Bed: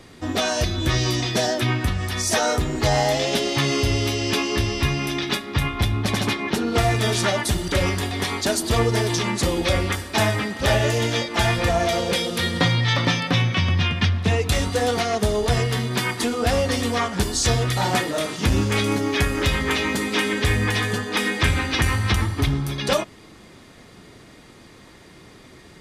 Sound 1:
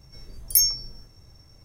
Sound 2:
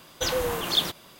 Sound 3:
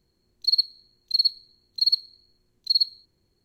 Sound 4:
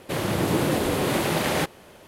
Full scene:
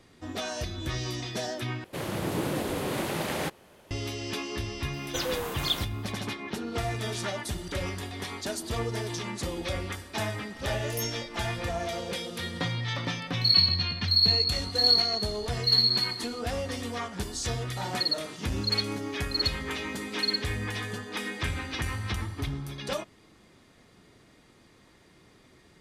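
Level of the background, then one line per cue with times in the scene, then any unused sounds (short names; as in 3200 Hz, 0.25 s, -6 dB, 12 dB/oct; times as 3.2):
bed -11.5 dB
1.84 replace with 4 -7 dB
4.93 add 2 -5 dB
10.42 add 1 -14.5 dB + limiter -6 dBFS
12.97 add 3 -4 dB + shoebox room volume 60 m³, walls hard, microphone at 0.75 m
17.53 add 3 -7.5 dB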